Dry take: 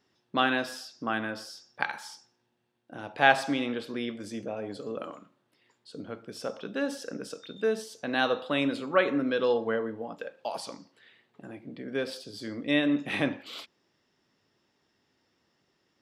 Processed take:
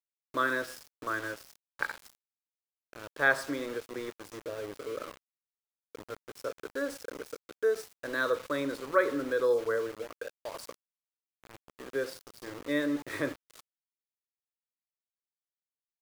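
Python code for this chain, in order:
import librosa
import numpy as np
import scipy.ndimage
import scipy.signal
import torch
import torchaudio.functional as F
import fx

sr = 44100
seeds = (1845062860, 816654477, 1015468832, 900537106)

y = fx.fixed_phaser(x, sr, hz=770.0, stages=6)
y = np.where(np.abs(y) >= 10.0 ** (-40.5 / 20.0), y, 0.0)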